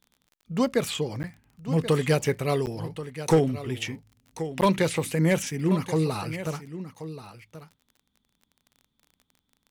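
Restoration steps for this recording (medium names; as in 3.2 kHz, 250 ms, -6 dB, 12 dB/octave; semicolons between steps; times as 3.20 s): clip repair -12.5 dBFS; de-click; interpolate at 1.23/2.66/4.61 s, 9.6 ms; inverse comb 1081 ms -13 dB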